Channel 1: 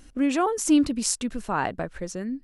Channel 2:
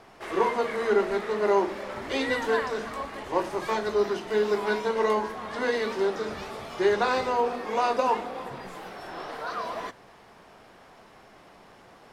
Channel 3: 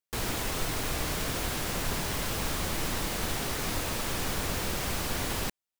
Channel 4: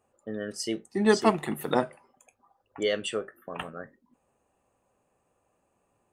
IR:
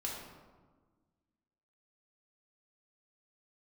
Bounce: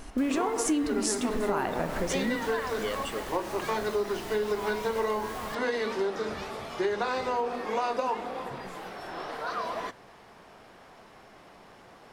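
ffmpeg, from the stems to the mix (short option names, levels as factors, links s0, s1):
-filter_complex "[0:a]volume=1.26,asplit=2[s0][s1];[s1]volume=0.447[s2];[1:a]volume=1[s3];[2:a]adelay=50,volume=0.251[s4];[3:a]volume=0.501[s5];[4:a]atrim=start_sample=2205[s6];[s2][s6]afir=irnorm=-1:irlink=0[s7];[s0][s3][s4][s5][s7]amix=inputs=5:normalize=0,acompressor=threshold=0.0562:ratio=6"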